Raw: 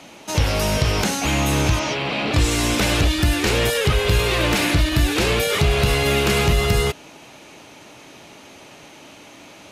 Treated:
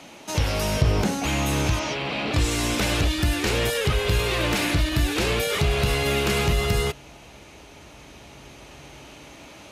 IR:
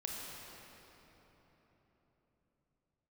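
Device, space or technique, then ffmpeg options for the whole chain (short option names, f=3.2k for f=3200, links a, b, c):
ducked reverb: -filter_complex "[0:a]asettb=1/sr,asplit=3[a][b][c];[a]atrim=end=0.814[d];[b]atrim=start=0.81:end=1.24,asetpts=PTS-STARTPTS,afade=t=in:d=0.004:c=qsin,afade=t=out:st=0.426:d=0.004:c=qsin,tiltshelf=f=970:g=5[e];[c]atrim=start=1.236[f];[d][e]acrossfade=d=0.004:c1=hsin:c2=qsin[g];[g][f]acrossfade=d=0.004:c1=qsin:c2=hsin,asplit=3[h][i][j];[1:a]atrim=start_sample=2205[k];[i][k]afir=irnorm=-1:irlink=0[l];[j]apad=whole_len=428362[m];[l][m]sidechaincompress=threshold=-38dB:ratio=8:attack=16:release=1440,volume=-4.5dB[n];[h][n]amix=inputs=2:normalize=0,volume=-4.5dB"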